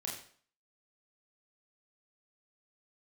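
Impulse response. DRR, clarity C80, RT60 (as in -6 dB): -3.5 dB, 8.5 dB, 0.50 s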